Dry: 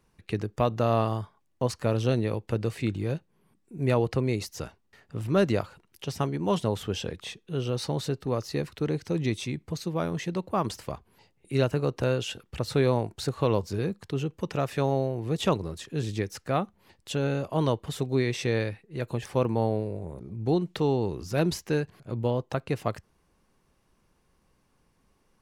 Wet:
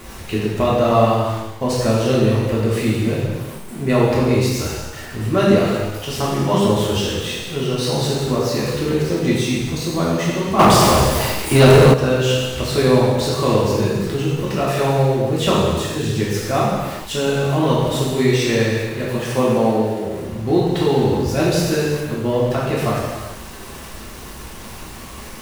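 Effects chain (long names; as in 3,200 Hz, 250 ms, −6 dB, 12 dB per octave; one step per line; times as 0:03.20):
converter with a step at zero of −38.5 dBFS
0:19.22–0:20.25: high-pass filter 150 Hz 12 dB per octave
reverb whose tail is shaped and stops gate 480 ms falling, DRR −7 dB
0:10.59–0:11.94: leveller curve on the samples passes 3
level +2.5 dB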